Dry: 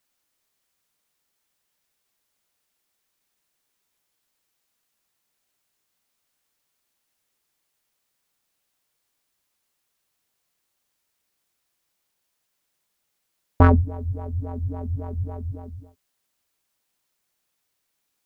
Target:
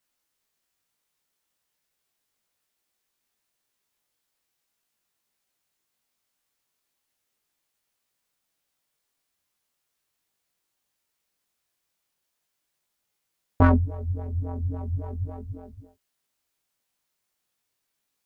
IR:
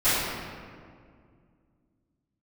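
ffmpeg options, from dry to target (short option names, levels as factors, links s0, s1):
-af "flanger=delay=18:depth=4.8:speed=0.38"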